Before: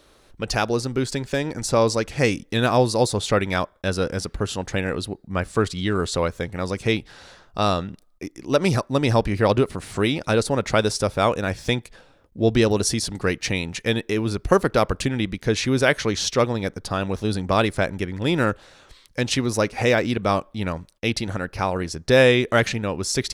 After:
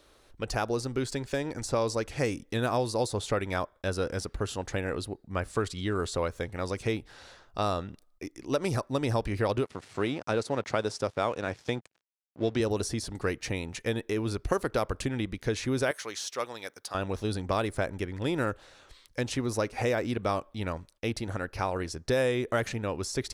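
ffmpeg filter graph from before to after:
ffmpeg -i in.wav -filter_complex "[0:a]asettb=1/sr,asplit=3[link_01][link_02][link_03];[link_01]atrim=end=9.654[link_04];[link_02]atrim=start=9.65:end=12.6,asetpts=PTS-STARTPTS,afade=type=in:duration=0.004:curve=qsin,afade=type=out:start_time=2.946:duration=0.004:curve=qsin,aeval=exprs='sgn(val(0))*max(abs(val(0))-0.01,0)':channel_layout=same,highpass=110,lowpass=6700[link_05];[link_03]atrim=start=12.596[link_06];[link_04][link_05]acrossfade=duration=0.004:curve1=hsin:curve2=qsin[link_07];[link_07][link_06]acrossfade=duration=0.004:curve1=qsin:curve2=hsin,asettb=1/sr,asplit=3[link_08][link_09][link_10];[link_08]atrim=end=15.914[link_11];[link_09]atrim=start=15.91:end=16.95,asetpts=PTS-STARTPTS,afade=type=in:duration=0.004:curve=qsin,afade=type=out:start_time=1.036:duration=0.004:curve=qsin,highpass=frequency=1400:poles=1,highshelf=frequency=11000:gain=9.5[link_12];[link_10]atrim=start=16.946[link_13];[link_11][link_12]acrossfade=duration=0.004:curve1=hsin:curve2=qsin[link_14];[link_14][link_13]acrossfade=duration=0.004:curve1=qsin:curve2=hsin,equalizer=frequency=180:width_type=o:width=0.68:gain=-5.5,acrossover=split=1700|6700[link_15][link_16][link_17];[link_15]acompressor=threshold=-19dB:ratio=4[link_18];[link_16]acompressor=threshold=-36dB:ratio=4[link_19];[link_17]acompressor=threshold=-36dB:ratio=4[link_20];[link_18][link_19][link_20]amix=inputs=3:normalize=0,volume=-5dB" out.wav

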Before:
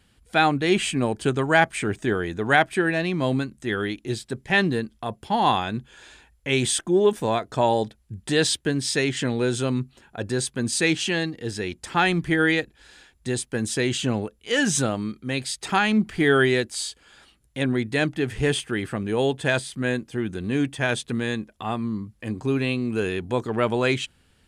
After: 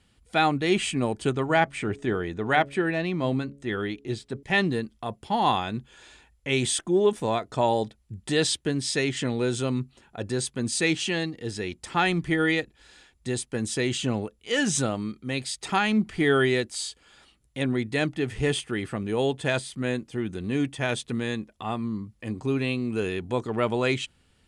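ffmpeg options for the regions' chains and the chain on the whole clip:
ffmpeg -i in.wav -filter_complex "[0:a]asettb=1/sr,asplit=3[link_01][link_02][link_03];[link_01]atrim=end=1.324[link_04];[link_02]atrim=start=1.32:end=4.43,asetpts=PTS-STARTPTS,afade=type=in:duration=0.004:curve=qsin,afade=type=out:start_time=3.106:duration=0.004:curve=qsin,lowpass=frequency=4000:poles=1,bandreject=frequency=140.2:width_type=h:width=4,bandreject=frequency=280.4:width_type=h:width=4,bandreject=frequency=420.6:width_type=h:width=4,bandreject=frequency=560.8:width_type=h:width=4[link_05];[link_03]atrim=start=4.426[link_06];[link_04][link_05]acrossfade=duration=0.004:curve1=hsin:curve2=qsin[link_07];[link_07][link_06]acrossfade=duration=0.004:curve1=qsin:curve2=hsin,lowpass=frequency=11000:width=0.5412,lowpass=frequency=11000:width=1.3066,bandreject=frequency=1600:width=12,volume=-2.5dB" out.wav

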